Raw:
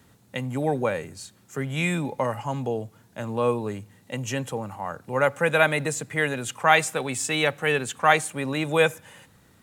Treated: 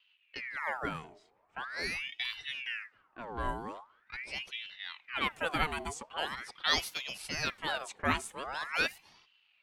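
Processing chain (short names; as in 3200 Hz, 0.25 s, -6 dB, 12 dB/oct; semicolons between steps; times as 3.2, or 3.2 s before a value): low-pass opened by the level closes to 1100 Hz, open at -21 dBFS; ring modulator with a swept carrier 1700 Hz, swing 70%, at 0.43 Hz; gain -8.5 dB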